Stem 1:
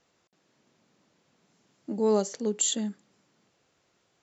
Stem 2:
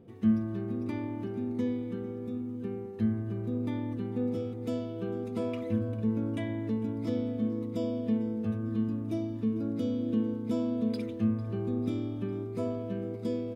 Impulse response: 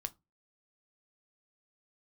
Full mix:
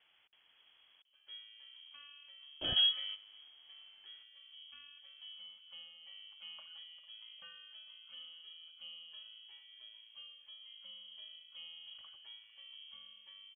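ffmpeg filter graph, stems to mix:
-filter_complex "[0:a]aemphasis=mode=reproduction:type=50fm,volume=2dB,asplit=3[a][b][c];[a]atrim=end=1.02,asetpts=PTS-STARTPTS,afade=t=out:st=1.016:d=0.004:c=hsin[d];[b]atrim=start=1.02:end=2.61,asetpts=PTS-STARTPTS,volume=0[e];[c]atrim=start=2.61,asetpts=PTS-STARTPTS,afade=t=in:d=0.004:c=hsin[f];[d][e][f]concat=n=3:v=0:a=1,asplit=2[g][h];[1:a]highpass=490,adelay=1050,volume=2dB[i];[h]apad=whole_len=643924[j];[i][j]sidechaingate=range=-15dB:threshold=-59dB:ratio=16:detection=peak[k];[g][k]amix=inputs=2:normalize=0,lowpass=f=3k:t=q:w=0.5098,lowpass=f=3k:t=q:w=0.6013,lowpass=f=3k:t=q:w=0.9,lowpass=f=3k:t=q:w=2.563,afreqshift=-3500"

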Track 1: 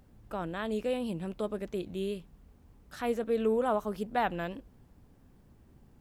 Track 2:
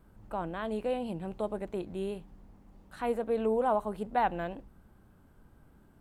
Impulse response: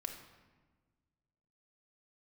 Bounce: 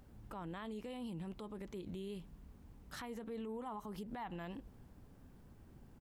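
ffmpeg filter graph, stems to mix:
-filter_complex "[0:a]acompressor=threshold=-32dB:ratio=6,volume=-0.5dB[a];[1:a]adelay=1,volume=-10.5dB[b];[a][b]amix=inputs=2:normalize=0,alimiter=level_in=13dB:limit=-24dB:level=0:latency=1:release=97,volume=-13dB"

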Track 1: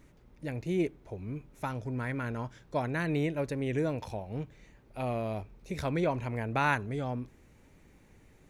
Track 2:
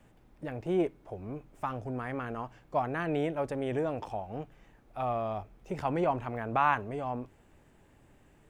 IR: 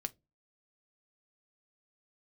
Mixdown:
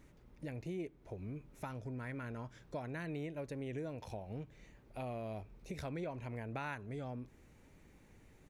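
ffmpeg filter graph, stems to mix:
-filter_complex "[0:a]volume=-3dB[a];[1:a]adelay=0.7,volume=-19.5dB[b];[a][b]amix=inputs=2:normalize=0,acompressor=threshold=-42dB:ratio=3"

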